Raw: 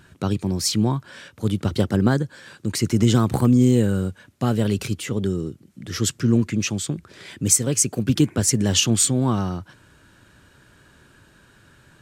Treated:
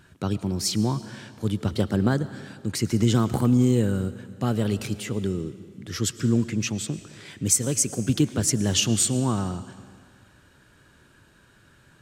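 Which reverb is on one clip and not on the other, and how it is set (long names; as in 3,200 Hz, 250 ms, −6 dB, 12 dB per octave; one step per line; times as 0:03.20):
comb and all-pass reverb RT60 1.9 s, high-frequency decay 0.95×, pre-delay 70 ms, DRR 14.5 dB
level −3.5 dB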